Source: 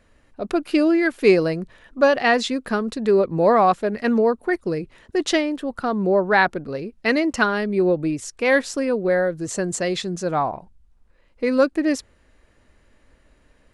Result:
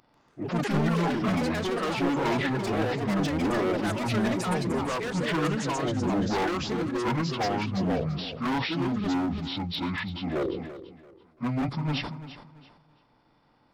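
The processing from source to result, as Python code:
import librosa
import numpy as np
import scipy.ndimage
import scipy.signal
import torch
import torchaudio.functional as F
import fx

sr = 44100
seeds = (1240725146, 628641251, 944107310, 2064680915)

p1 = fx.pitch_bins(x, sr, semitones=-12.0)
p2 = fx.highpass(p1, sr, hz=200.0, slope=6)
p3 = fx.level_steps(p2, sr, step_db=22)
p4 = p2 + (p3 * 10.0 ** (-3.0 / 20.0))
p5 = np.clip(10.0 ** (21.0 / 20.0) * p4, -1.0, 1.0) / 10.0 ** (21.0 / 20.0)
p6 = fx.echo_pitch(p5, sr, ms=142, semitones=5, count=3, db_per_echo=-3.0)
p7 = p6 + fx.echo_feedback(p6, sr, ms=338, feedback_pct=30, wet_db=-14.0, dry=0)
p8 = fx.sustainer(p7, sr, db_per_s=46.0)
y = p8 * 10.0 ** (-4.0 / 20.0)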